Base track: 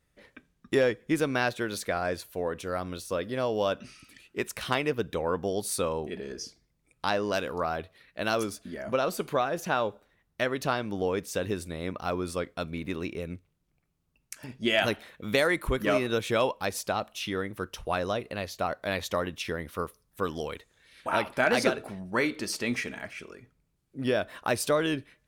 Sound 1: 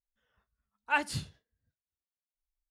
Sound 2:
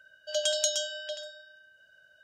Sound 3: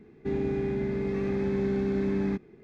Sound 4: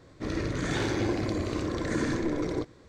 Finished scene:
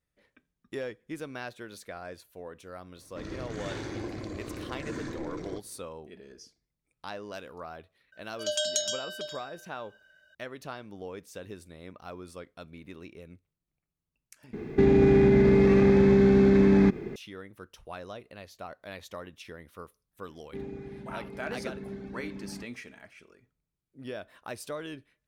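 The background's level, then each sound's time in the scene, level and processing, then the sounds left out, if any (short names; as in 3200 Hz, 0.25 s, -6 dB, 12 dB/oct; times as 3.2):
base track -12 dB
2.95 add 4 -8.5 dB
8.12 add 2 -1.5 dB
14.53 replace with 3 -11.5 dB + maximiser +27 dB
20.28 add 3 -8.5 dB + reverb removal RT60 1.6 s
not used: 1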